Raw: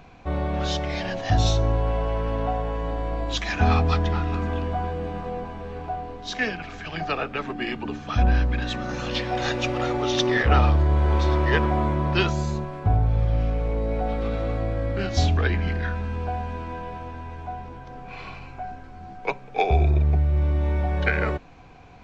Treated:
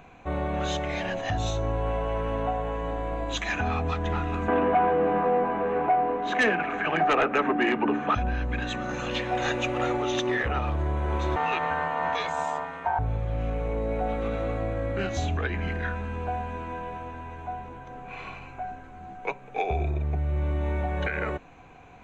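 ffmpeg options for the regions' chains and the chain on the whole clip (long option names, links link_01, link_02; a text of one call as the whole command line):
ffmpeg -i in.wav -filter_complex "[0:a]asettb=1/sr,asplit=3[link_01][link_02][link_03];[link_01]atrim=end=4.484[link_04];[link_02]atrim=start=4.48:end=8.15,asetpts=PTS-STARTPTS,afade=type=in:duration=0.004:curve=qsin,afade=type=out:start_time=3.666:duration=0.004:curve=qsin,acrossover=split=180 2400:gain=0.1 1 0.0891[link_05][link_06][link_07];[link_05][link_06][link_07]amix=inputs=3:normalize=0,aeval=exprs='0.211*sin(PI/2*2.51*val(0)/0.211)':channel_layout=same[link_08];[link_03]atrim=start=8.146[link_09];[link_04][link_08]acrossfade=duration=0.004:curve1=hsin:curve2=qsin[link_10];[link_10][link_09]acrossfade=duration=0.004:curve1=qsin:curve2=hsin,asettb=1/sr,asplit=3[link_11][link_12][link_13];[link_11]atrim=end=11.364[link_14];[link_12]atrim=start=11.36:end=12.99,asetpts=PTS-STARTPTS,afade=type=in:duration=0.004:curve=qsin,afade=type=out:start_time=1.626:duration=0.004:curve=qsin,lowpass=4100,aeval=exprs='val(0)*sin(2*PI*820*n/s)':channel_layout=same,aemphasis=mode=production:type=75fm[link_15];[link_13]atrim=start=12.986[link_16];[link_14][link_15]acrossfade=duration=0.004:curve1=hsin:curve2=qsin[link_17];[link_17][link_16]acrossfade=duration=0.004:curve1=qsin:curve2=hsin,superequalizer=13b=0.631:14b=0.251,alimiter=limit=-15.5dB:level=0:latency=1:release=176,lowshelf=frequency=190:gain=-6" out.wav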